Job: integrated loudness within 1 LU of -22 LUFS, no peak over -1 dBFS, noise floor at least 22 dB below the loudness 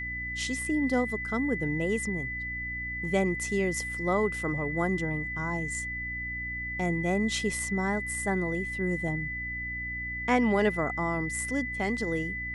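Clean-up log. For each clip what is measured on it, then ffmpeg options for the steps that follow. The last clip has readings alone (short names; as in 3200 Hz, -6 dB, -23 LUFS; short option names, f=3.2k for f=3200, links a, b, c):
hum 60 Hz; harmonics up to 300 Hz; hum level -39 dBFS; steady tone 2000 Hz; tone level -33 dBFS; loudness -29.5 LUFS; peak -12.0 dBFS; loudness target -22.0 LUFS
-> -af "bandreject=f=60:t=h:w=4,bandreject=f=120:t=h:w=4,bandreject=f=180:t=h:w=4,bandreject=f=240:t=h:w=4,bandreject=f=300:t=h:w=4"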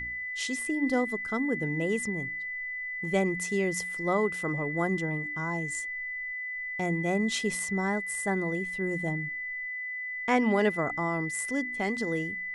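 hum none; steady tone 2000 Hz; tone level -33 dBFS
-> -af "bandreject=f=2k:w=30"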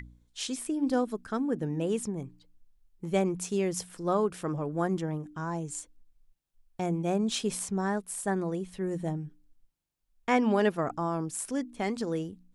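steady tone none; loudness -31.0 LUFS; peak -13.0 dBFS; loudness target -22.0 LUFS
-> -af "volume=9dB"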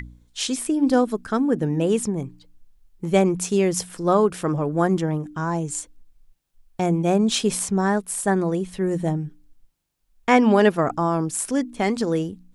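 loudness -22.0 LUFS; peak -4.0 dBFS; noise floor -61 dBFS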